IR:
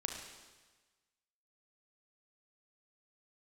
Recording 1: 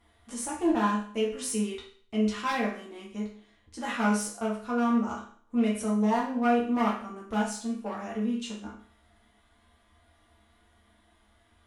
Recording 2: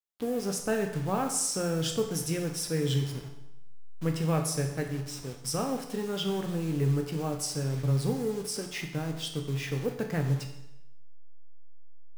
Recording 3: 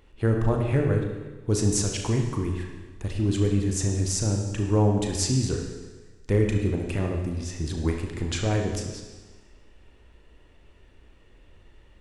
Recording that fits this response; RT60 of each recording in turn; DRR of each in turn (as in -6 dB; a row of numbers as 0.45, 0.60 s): 3; 0.50, 0.85, 1.3 s; -5.5, 3.0, 2.0 dB